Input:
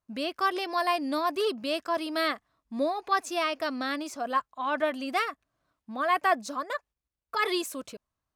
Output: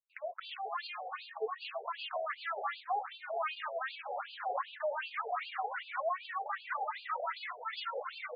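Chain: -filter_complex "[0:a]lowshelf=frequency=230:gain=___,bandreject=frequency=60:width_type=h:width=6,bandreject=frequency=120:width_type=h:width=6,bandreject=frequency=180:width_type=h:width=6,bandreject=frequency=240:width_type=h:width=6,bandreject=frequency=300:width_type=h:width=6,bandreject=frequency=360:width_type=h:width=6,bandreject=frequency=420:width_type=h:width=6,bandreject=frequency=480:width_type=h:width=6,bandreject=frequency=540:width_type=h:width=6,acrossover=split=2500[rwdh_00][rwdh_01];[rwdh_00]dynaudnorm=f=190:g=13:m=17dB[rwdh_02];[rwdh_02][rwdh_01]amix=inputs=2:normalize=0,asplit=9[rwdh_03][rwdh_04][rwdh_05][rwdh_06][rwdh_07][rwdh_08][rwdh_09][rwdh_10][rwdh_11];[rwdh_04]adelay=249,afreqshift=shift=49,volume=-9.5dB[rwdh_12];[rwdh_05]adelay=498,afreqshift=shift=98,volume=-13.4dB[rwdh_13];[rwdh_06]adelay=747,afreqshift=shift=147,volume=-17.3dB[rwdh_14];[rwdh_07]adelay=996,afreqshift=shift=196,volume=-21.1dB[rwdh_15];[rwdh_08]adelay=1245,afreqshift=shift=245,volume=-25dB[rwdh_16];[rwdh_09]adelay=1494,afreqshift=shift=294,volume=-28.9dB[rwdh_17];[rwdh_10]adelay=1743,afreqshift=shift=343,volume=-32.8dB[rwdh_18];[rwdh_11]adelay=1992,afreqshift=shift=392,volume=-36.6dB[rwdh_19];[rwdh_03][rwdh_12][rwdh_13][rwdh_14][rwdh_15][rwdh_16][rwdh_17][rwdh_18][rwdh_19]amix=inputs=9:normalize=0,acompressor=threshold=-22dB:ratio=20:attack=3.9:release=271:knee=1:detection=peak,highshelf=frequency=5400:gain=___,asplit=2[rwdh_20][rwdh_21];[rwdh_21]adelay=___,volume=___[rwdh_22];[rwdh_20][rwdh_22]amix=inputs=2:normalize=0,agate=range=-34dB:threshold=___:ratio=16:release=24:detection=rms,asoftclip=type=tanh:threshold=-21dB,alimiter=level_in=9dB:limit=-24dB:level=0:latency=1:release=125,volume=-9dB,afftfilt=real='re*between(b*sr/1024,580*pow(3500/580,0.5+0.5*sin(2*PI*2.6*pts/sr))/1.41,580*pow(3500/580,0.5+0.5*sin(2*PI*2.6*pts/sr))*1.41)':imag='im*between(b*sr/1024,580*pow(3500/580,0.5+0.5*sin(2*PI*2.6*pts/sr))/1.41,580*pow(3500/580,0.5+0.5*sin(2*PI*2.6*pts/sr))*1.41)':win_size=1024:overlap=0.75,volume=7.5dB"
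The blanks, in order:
-3, 8.5, 18, -9dB, -48dB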